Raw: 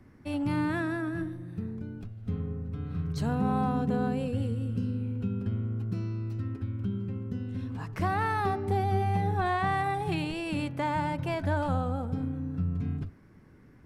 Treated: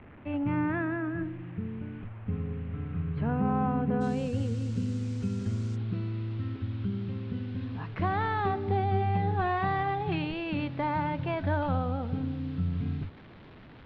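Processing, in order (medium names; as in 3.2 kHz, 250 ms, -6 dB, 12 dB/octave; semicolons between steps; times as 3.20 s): one-bit delta coder 64 kbps, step -44 dBFS; steep low-pass 2.7 kHz 36 dB/octave, from 4.00 s 8.2 kHz, from 5.75 s 3.9 kHz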